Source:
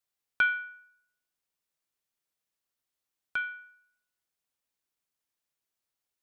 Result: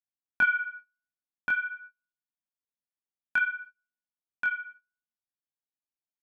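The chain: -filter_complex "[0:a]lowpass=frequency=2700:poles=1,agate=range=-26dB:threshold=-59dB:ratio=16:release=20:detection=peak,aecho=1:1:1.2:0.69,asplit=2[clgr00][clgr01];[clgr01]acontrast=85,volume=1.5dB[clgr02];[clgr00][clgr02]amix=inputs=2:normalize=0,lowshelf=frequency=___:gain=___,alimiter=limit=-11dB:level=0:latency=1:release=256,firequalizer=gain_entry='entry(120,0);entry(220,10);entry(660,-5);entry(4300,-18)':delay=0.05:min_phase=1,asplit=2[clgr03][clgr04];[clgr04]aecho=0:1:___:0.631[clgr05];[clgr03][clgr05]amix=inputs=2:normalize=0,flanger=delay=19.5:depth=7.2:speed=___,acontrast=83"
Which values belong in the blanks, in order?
400, -9.5, 1079, 0.51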